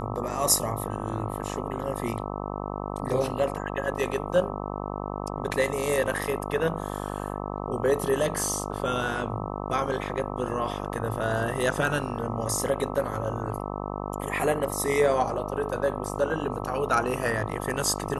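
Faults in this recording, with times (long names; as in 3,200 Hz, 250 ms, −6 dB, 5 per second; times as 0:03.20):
mains buzz 50 Hz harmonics 26 −33 dBFS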